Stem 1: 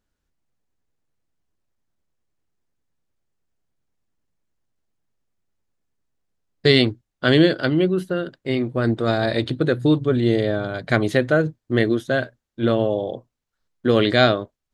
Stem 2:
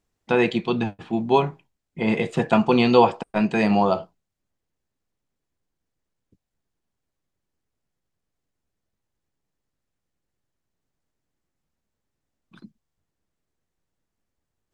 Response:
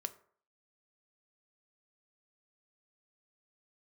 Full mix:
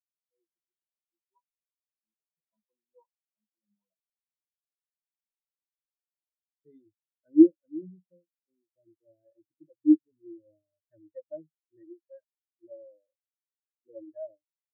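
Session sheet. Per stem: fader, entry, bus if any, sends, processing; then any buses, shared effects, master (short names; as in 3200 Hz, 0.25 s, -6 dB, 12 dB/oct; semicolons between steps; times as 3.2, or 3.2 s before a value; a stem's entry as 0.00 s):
-4.5 dB, 0.00 s, no send, spectral gate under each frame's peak -15 dB strong
-11.5 dB, 0.00 s, no send, dry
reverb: off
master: ripple EQ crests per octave 1.2, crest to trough 11 dB; spectral expander 4:1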